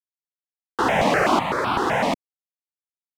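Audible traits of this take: a quantiser's noise floor 10-bit, dither none; tremolo saw up 0.72 Hz, depth 60%; notches that jump at a steady rate 7.9 Hz 390–1900 Hz

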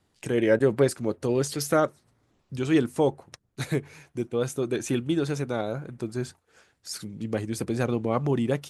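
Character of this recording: noise floor -71 dBFS; spectral tilt -6.0 dB/octave

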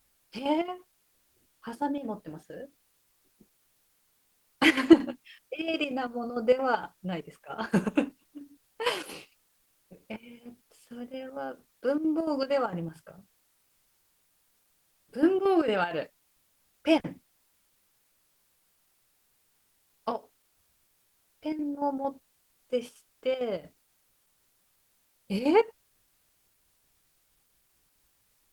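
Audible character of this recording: chopped level 4.4 Hz, depth 60%, duty 70%; a quantiser's noise floor 12-bit, dither triangular; Opus

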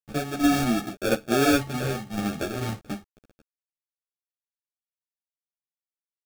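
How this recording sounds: a quantiser's noise floor 8-bit, dither none; tremolo saw down 2.3 Hz, depth 55%; aliases and images of a low sample rate 1 kHz, jitter 0%; a shimmering, thickened sound

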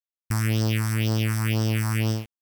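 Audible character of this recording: a buzz of ramps at a fixed pitch in blocks of 16 samples; phasing stages 4, 2 Hz, lowest notch 460–2300 Hz; a quantiser's noise floor 8-bit, dither none; Vorbis

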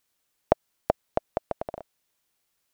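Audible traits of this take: noise floor -76 dBFS; spectral tilt -3.5 dB/octave

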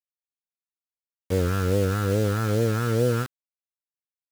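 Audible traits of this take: phasing stages 2, 2.4 Hz, lowest notch 520–1200 Hz; a quantiser's noise floor 6-bit, dither none

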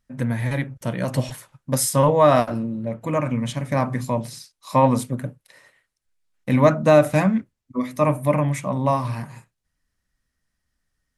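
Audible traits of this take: noise floor -79 dBFS; spectral tilt -5.5 dB/octave

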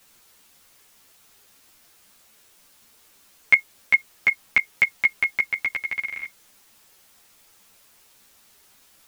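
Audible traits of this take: tremolo saw up 12 Hz, depth 55%; a quantiser's noise floor 10-bit, dither triangular; a shimmering, thickened sound

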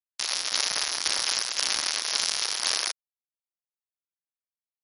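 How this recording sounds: a buzz of ramps at a fixed pitch in blocks of 8 samples; tremolo saw down 1.9 Hz, depth 50%; a quantiser's noise floor 8-bit, dither none; MP3

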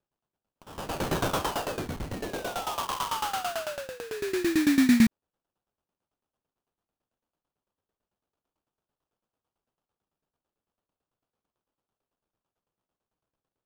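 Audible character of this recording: tremolo saw down 9 Hz, depth 90%; phasing stages 6, 0.19 Hz, lowest notch 490–1900 Hz; aliases and images of a low sample rate 2.1 kHz, jitter 20%

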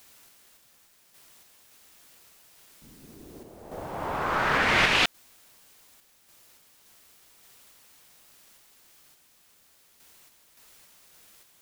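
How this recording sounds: a quantiser's noise floor 10-bit, dither triangular; random-step tremolo

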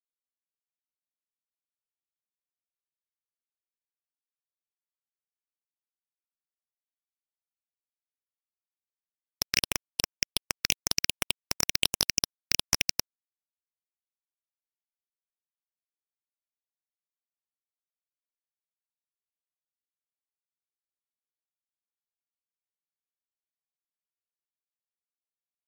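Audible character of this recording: a buzz of ramps at a fixed pitch in blocks of 8 samples; phasing stages 6, 2.7 Hz, lowest notch 800–4600 Hz; a quantiser's noise floor 10-bit, dither none; MP3

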